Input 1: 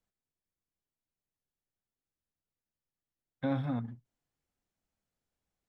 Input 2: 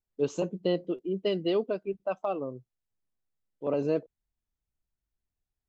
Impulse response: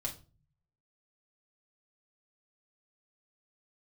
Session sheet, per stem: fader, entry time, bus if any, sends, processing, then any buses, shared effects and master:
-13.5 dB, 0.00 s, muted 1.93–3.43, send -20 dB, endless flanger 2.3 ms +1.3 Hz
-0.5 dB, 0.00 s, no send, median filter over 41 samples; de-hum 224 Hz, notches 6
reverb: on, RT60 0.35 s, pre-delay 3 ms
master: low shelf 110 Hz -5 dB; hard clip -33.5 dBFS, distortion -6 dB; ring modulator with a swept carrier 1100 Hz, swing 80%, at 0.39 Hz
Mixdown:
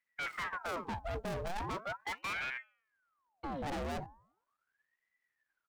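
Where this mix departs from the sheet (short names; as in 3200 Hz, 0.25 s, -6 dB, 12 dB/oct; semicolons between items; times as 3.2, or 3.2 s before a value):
stem 1 -13.5 dB -> -2.5 dB; stem 2 -0.5 dB -> +8.5 dB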